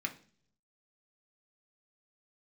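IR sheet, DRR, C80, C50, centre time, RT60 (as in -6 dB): 2.0 dB, 19.5 dB, 14.5 dB, 8 ms, 0.50 s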